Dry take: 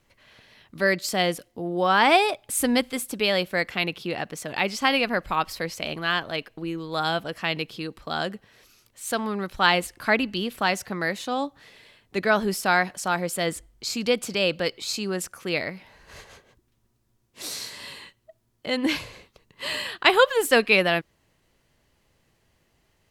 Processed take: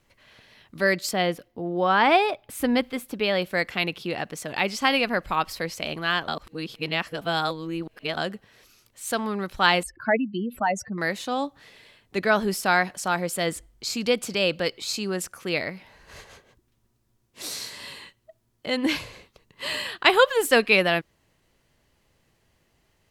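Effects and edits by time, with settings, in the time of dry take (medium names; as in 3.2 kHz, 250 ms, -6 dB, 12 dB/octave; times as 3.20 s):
1.11–3.42 s: peaking EQ 8.5 kHz -13 dB 1.5 oct
6.28–8.17 s: reverse
9.83–10.98 s: spectral contrast enhancement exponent 2.6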